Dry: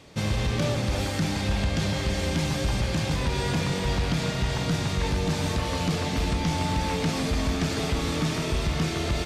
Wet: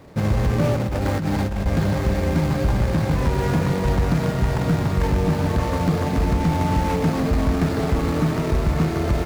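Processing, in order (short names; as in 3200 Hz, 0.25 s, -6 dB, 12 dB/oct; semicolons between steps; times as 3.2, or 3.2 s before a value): median filter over 15 samples; 0.75–1.66 negative-ratio compressor -29 dBFS, ratio -1; gain +6.5 dB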